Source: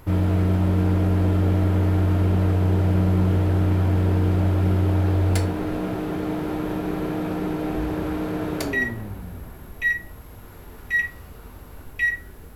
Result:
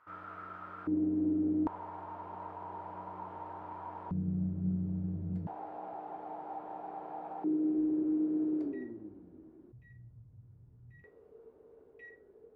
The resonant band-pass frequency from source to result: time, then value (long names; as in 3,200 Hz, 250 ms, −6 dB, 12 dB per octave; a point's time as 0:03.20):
resonant band-pass, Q 8.6
1,300 Hz
from 0:00.87 300 Hz
from 0:01.67 940 Hz
from 0:04.11 170 Hz
from 0:05.47 810 Hz
from 0:07.44 320 Hz
from 0:09.72 120 Hz
from 0:11.04 440 Hz